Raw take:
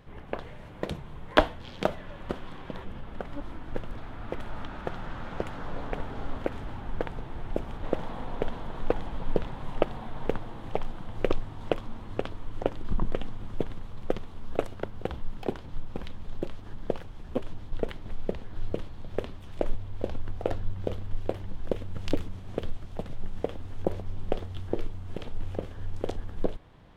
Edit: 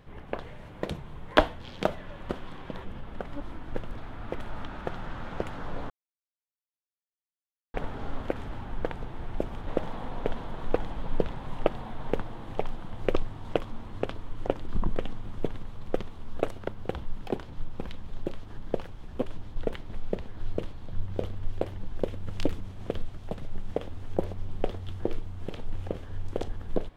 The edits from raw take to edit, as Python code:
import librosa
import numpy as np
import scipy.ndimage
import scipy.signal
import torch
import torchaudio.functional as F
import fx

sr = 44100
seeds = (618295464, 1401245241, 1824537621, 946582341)

y = fx.edit(x, sr, fx.insert_silence(at_s=5.9, length_s=1.84),
    fx.cut(start_s=19.09, length_s=1.52), tone=tone)